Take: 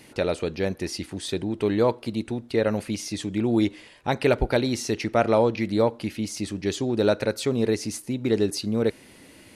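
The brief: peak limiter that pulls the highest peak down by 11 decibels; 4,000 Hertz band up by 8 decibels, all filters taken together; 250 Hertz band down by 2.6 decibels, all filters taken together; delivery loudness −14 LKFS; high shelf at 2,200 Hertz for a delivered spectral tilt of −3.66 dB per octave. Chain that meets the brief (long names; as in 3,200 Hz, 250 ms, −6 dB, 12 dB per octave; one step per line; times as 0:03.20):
parametric band 250 Hz −3.5 dB
high-shelf EQ 2,200 Hz +6 dB
parametric band 4,000 Hz +4 dB
level +13.5 dB
brickwall limiter −2.5 dBFS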